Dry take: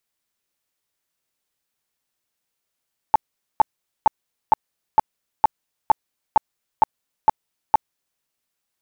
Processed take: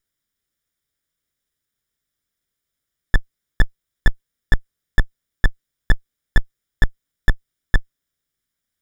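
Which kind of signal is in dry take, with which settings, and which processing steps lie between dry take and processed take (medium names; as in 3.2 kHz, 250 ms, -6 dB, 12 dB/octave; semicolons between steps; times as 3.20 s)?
tone bursts 873 Hz, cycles 14, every 0.46 s, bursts 11, -8 dBFS
comb filter that takes the minimum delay 0.57 ms; bass shelf 110 Hz +10 dB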